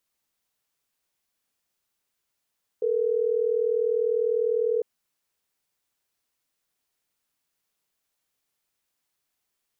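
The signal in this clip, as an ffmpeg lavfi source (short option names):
-f lavfi -i "aevalsrc='0.0631*(sin(2*PI*440*t)+sin(2*PI*480*t))*clip(min(mod(t,6),2-mod(t,6))/0.005,0,1)':d=3.12:s=44100"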